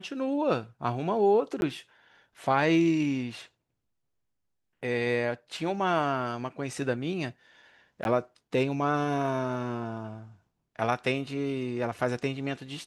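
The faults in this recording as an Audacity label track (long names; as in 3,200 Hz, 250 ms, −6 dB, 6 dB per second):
1.610000	1.620000	drop-out 11 ms
8.040000	8.050000	drop-out 11 ms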